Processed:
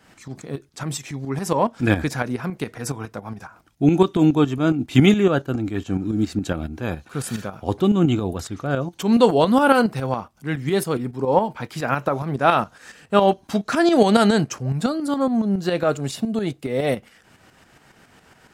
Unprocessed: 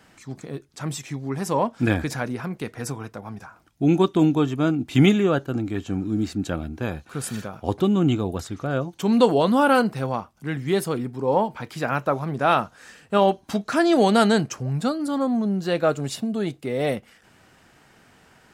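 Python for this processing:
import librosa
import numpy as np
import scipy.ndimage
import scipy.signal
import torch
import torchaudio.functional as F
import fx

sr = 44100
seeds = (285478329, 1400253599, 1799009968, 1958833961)

y = fx.tremolo_shape(x, sr, shape='saw_up', hz=7.2, depth_pct=60)
y = F.gain(torch.from_numpy(y), 5.0).numpy()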